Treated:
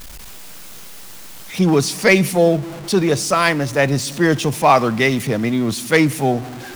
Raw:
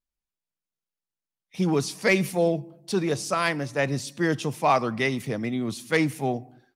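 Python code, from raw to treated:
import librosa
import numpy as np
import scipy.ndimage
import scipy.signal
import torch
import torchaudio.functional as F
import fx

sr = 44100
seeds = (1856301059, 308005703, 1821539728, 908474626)

y = x + 0.5 * 10.0 ** (-35.5 / 20.0) * np.sign(x)
y = y * 10.0 ** (8.0 / 20.0)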